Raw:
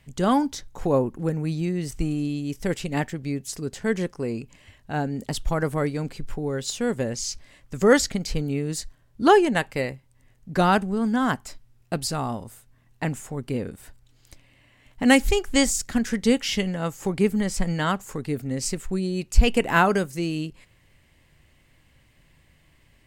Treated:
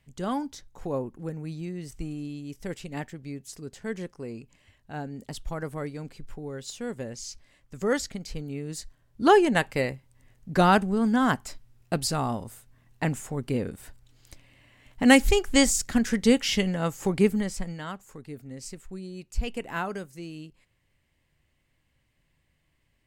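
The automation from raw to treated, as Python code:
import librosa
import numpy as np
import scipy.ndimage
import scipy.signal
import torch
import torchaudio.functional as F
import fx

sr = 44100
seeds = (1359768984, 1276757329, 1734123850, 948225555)

y = fx.gain(x, sr, db=fx.line((8.46, -9.0), (9.58, 0.0), (17.25, 0.0), (17.82, -12.5)))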